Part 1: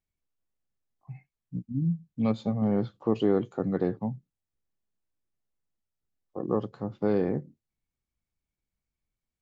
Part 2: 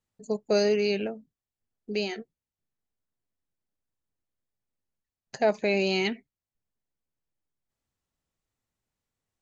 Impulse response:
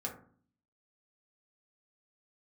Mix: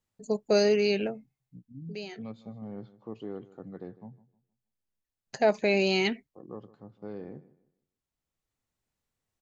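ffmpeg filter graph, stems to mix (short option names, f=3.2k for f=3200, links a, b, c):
-filter_complex "[0:a]volume=-15dB,asplit=3[a][b][c];[b]volume=-18.5dB[d];[1:a]volume=0.5dB[e];[c]apad=whole_len=415257[f];[e][f]sidechaincompress=threshold=-49dB:ratio=8:attack=16:release=1420[g];[d]aecho=0:1:155|310|465|620:1|0.29|0.0841|0.0244[h];[a][g][h]amix=inputs=3:normalize=0"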